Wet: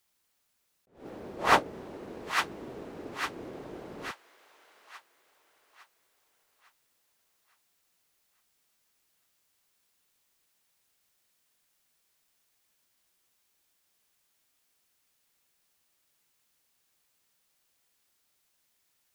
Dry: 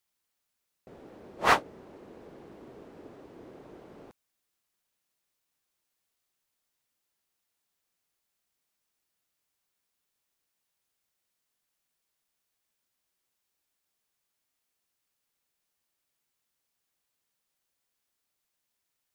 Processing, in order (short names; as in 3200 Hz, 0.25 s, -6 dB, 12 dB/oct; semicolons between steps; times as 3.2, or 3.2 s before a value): on a send: thin delay 0.858 s, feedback 39%, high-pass 1500 Hz, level -3.5 dB; on the sum: attack slew limiter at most 160 dB/s; gain +6.5 dB